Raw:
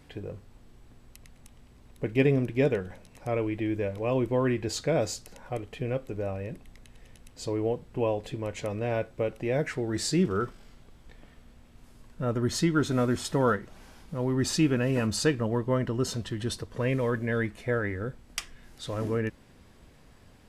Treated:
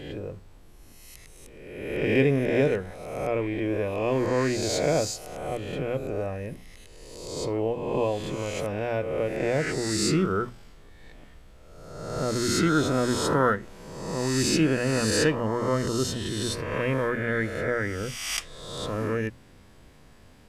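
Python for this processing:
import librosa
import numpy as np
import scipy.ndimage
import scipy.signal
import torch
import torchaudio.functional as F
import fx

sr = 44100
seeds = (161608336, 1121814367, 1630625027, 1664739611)

y = fx.spec_swells(x, sr, rise_s=1.25)
y = fx.hum_notches(y, sr, base_hz=60, count=4)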